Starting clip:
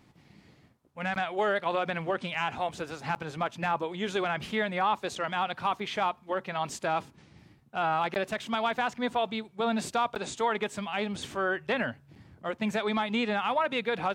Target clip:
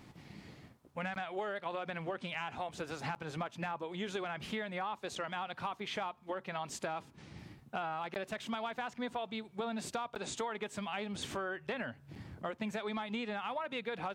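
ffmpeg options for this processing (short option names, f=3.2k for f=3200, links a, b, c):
-af "acompressor=threshold=-41dB:ratio=6,volume=4.5dB"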